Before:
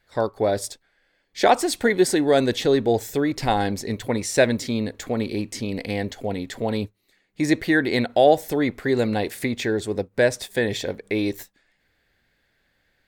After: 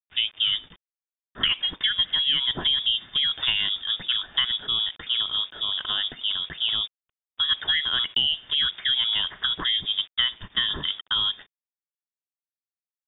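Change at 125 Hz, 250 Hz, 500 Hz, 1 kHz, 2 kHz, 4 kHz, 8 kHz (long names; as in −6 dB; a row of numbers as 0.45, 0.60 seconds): −16.5 dB, −23.5 dB, −28.5 dB, −13.5 dB, −3.5 dB, +14.5 dB, below −40 dB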